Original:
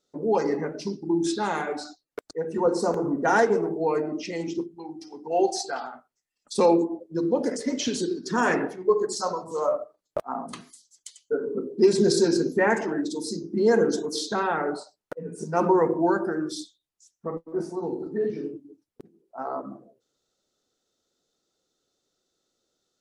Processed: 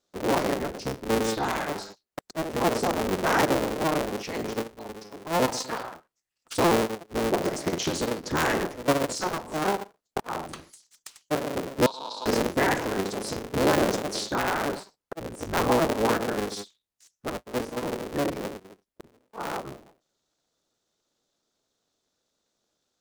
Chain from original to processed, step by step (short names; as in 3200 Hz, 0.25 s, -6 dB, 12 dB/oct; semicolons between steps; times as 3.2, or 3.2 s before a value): cycle switcher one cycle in 3, inverted; in parallel at -3 dB: limiter -16 dBFS, peak gain reduction 7.5 dB; 11.86–12.26 on the sum: double band-pass 1900 Hz, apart 2 oct; gain -5.5 dB